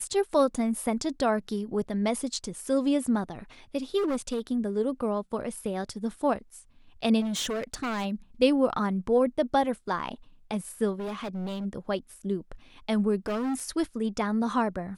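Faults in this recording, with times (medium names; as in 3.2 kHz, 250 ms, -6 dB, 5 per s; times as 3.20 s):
3.97–4.40 s: clipped -24.5 dBFS
7.20–8.06 s: clipped -27.5 dBFS
10.99–11.66 s: clipped -30.5 dBFS
13.26–13.70 s: clipped -26.5 dBFS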